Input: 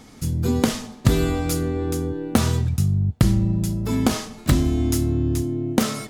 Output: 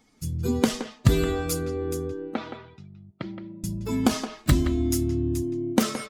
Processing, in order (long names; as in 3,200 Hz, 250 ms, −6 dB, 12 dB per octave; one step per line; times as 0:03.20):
spectral dynamics exaggerated over time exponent 1.5
0:02.34–0:03.64: loudspeaker in its box 440–3,000 Hz, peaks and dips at 470 Hz −5 dB, 710 Hz −5 dB, 1,100 Hz −9 dB, 1,700 Hz −8 dB, 2,800 Hz −9 dB
far-end echo of a speakerphone 170 ms, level −8 dB